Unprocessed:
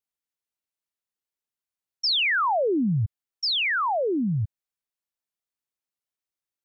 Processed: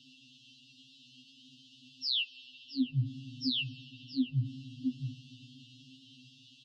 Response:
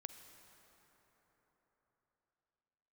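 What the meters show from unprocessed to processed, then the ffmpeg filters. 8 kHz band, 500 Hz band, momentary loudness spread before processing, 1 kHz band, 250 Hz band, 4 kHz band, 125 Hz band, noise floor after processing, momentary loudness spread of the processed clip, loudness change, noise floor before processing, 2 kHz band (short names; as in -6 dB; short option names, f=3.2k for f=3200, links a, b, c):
n/a, under -40 dB, 8 LU, under -40 dB, -6.5 dB, -8.0 dB, -6.0 dB, -60 dBFS, 22 LU, -11.0 dB, under -85 dBFS, -19.5 dB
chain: -filter_complex "[0:a]aeval=exprs='val(0)+0.5*0.0133*sgn(val(0))':c=same,acrossover=split=180 2600:gain=0.224 1 0.224[a][b][c];[a][b][c]amix=inputs=3:normalize=0,aecho=1:1:669:0.224,asplit=2[d][e];[1:a]atrim=start_sample=2205[f];[e][f]afir=irnorm=-1:irlink=0,volume=-2dB[g];[d][g]amix=inputs=2:normalize=0,afftfilt=real='re*(1-between(b*sr/4096,290,2600))':imag='im*(1-between(b*sr/4096,290,2600))':win_size=4096:overlap=0.75,highpass=79,alimiter=limit=-23dB:level=0:latency=1:release=363,lowpass=f=4.7k:w=0.5412,lowpass=f=4.7k:w=1.3066,acompressor=threshold=-33dB:ratio=2.5,afftfilt=real='re*2.45*eq(mod(b,6),0)':imag='im*2.45*eq(mod(b,6),0)':win_size=2048:overlap=0.75,volume=4dB"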